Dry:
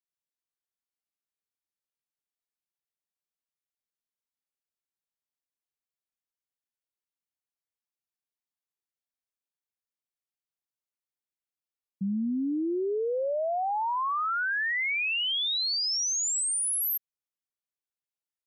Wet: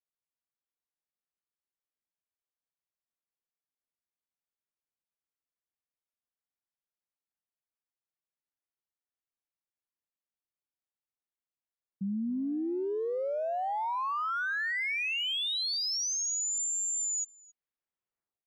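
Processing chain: tape stop on the ending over 2.35 s; level-controlled noise filter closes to 2 kHz; speakerphone echo 270 ms, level -11 dB; trim -3.5 dB

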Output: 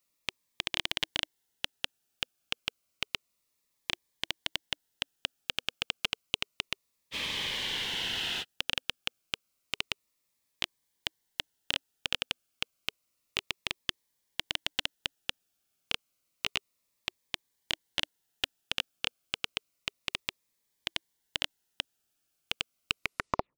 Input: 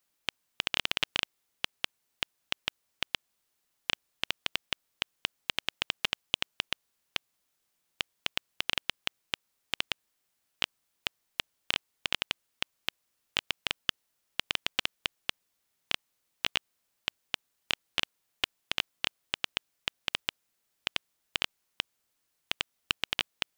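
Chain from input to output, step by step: tape stop on the ending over 0.68 s; spectral freeze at 7.16 s, 1.25 s; Shepard-style phaser falling 0.3 Hz

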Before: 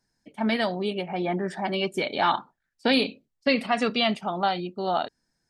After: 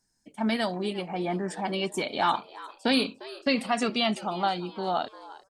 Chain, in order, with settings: graphic EQ 125/500/2000/4000/8000 Hz -3/-4/-4/-3/+9 dB; frequency-shifting echo 351 ms, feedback 42%, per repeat +130 Hz, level -18 dB

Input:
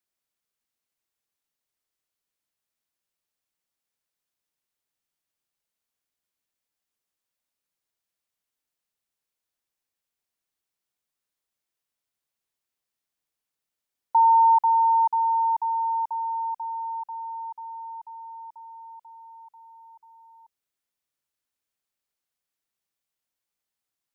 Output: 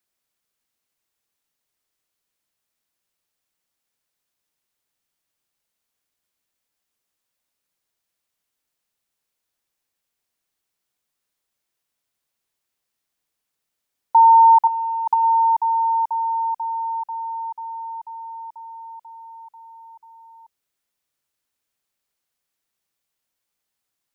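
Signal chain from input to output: 14.67–15.25 s: compressor with a negative ratio -25 dBFS, ratio -0.5; trim +6 dB

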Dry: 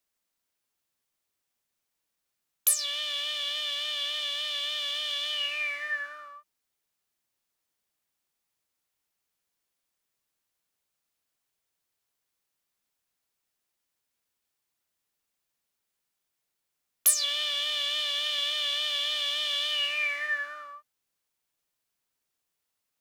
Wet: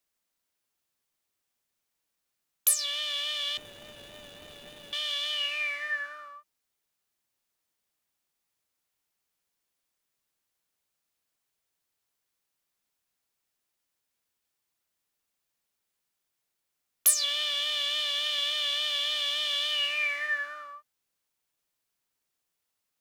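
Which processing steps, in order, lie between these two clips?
3.57–4.93 s: median filter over 41 samples

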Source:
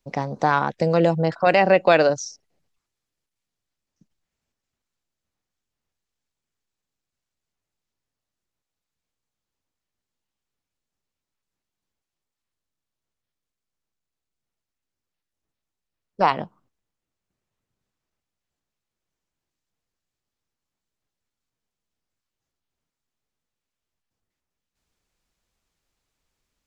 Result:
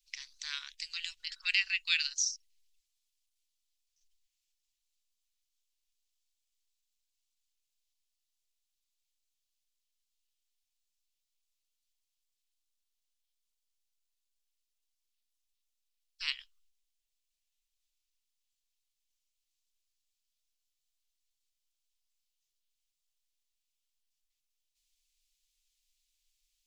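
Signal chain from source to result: inverse Chebyshev band-stop 100–720 Hz, stop band 70 dB; trim +2.5 dB

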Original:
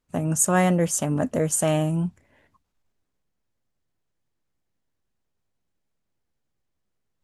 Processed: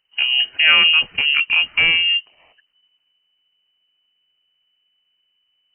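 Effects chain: gliding tape speed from 76% -> 176%; frequency inversion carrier 3 kHz; trim +6.5 dB

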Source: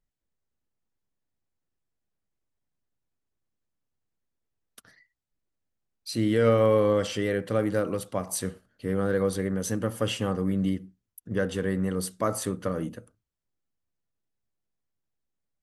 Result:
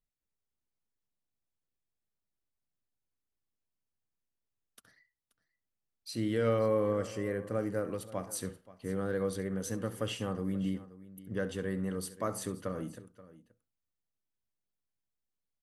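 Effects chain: 6.59–7.89 s: peaking EQ 3.5 kHz -13.5 dB 0.73 oct; on a send: multi-tap echo 68/529 ms -16/-18 dB; on the sum: trim -7.5 dB

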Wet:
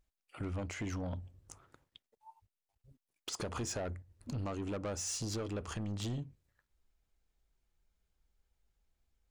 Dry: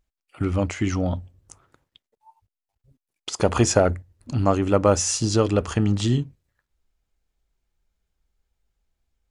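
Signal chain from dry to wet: compression 3:1, threshold -30 dBFS, peak gain reduction 13.5 dB; saturation -29.5 dBFS, distortion -9 dB; trim -3.5 dB

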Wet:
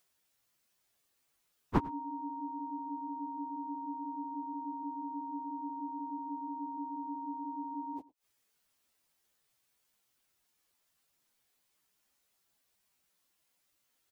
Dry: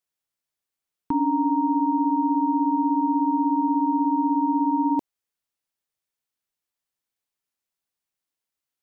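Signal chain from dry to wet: dynamic bell 190 Hz, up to -6 dB, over -45 dBFS, Q 3.5; inverted gate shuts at -25 dBFS, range -29 dB; plain phase-vocoder stretch 1.6×; on a send: delay 102 ms -20.5 dB; on the sum: trim +12.5 dB

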